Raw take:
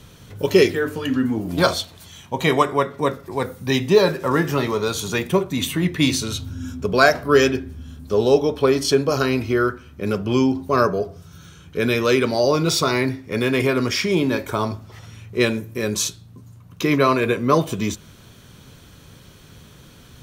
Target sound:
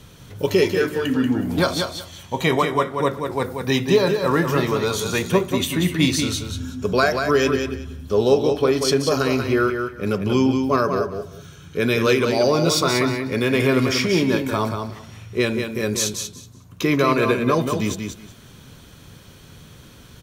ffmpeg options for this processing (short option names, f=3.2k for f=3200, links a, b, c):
-filter_complex "[0:a]alimiter=limit=-7.5dB:level=0:latency=1:release=196,asplit=2[a][b];[b]aecho=0:1:186|372|558:0.501|0.0952|0.0181[c];[a][c]amix=inputs=2:normalize=0"